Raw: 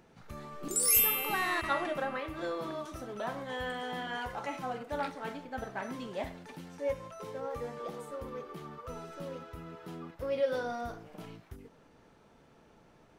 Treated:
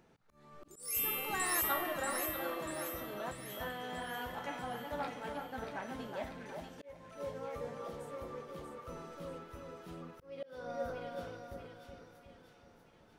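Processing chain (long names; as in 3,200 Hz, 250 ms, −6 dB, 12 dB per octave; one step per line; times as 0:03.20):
time-frequency box erased 0:03.31–0:03.60, 240–1,800 Hz
echo with a time of its own for lows and highs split 1,800 Hz, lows 371 ms, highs 638 ms, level −5 dB
volume swells 402 ms
level −5 dB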